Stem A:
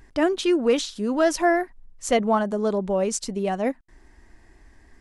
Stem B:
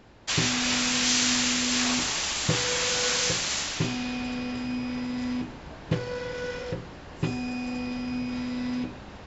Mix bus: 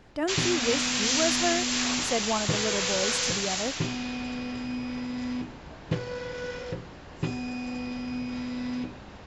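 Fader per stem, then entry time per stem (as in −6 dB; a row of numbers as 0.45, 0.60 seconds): −8.0, −2.0 decibels; 0.00, 0.00 seconds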